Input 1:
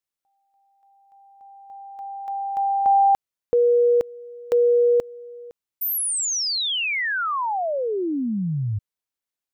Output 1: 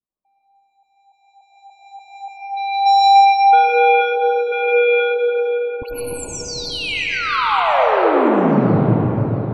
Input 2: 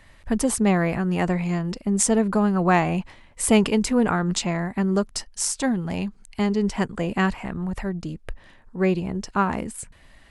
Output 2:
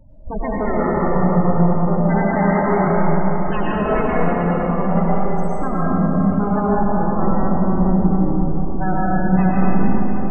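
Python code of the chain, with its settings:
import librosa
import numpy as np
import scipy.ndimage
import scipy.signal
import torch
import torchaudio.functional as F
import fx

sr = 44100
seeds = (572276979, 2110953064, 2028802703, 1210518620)

y = scipy.ndimage.median_filter(x, 25, mode='constant')
y = fx.env_lowpass_down(y, sr, base_hz=2200.0, full_db=-20.0)
y = fx.fold_sine(y, sr, drive_db=16, ceiling_db=-8.5)
y = fx.spec_topn(y, sr, count=16)
y = fx.echo_feedback(y, sr, ms=680, feedback_pct=43, wet_db=-22.0)
y = fx.rev_freeverb(y, sr, rt60_s=4.7, hf_ratio=0.45, predelay_ms=70, drr_db=-7.5)
y = y * librosa.db_to_amplitude(-12.5)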